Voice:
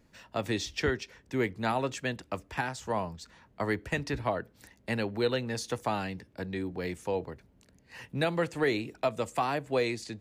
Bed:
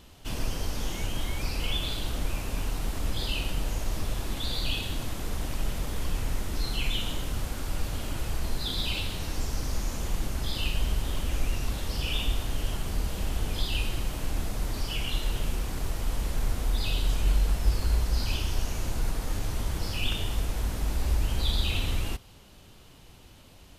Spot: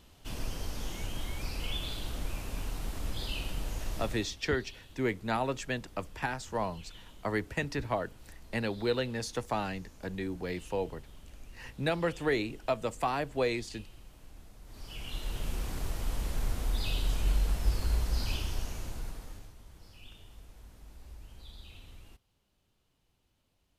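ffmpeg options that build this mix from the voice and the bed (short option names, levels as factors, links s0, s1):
-filter_complex "[0:a]adelay=3650,volume=0.841[s0];[1:a]volume=3.98,afade=t=out:st=4:d=0.33:silence=0.158489,afade=t=in:st=14.64:d=1.01:silence=0.125893,afade=t=out:st=18.28:d=1.26:silence=0.112202[s1];[s0][s1]amix=inputs=2:normalize=0"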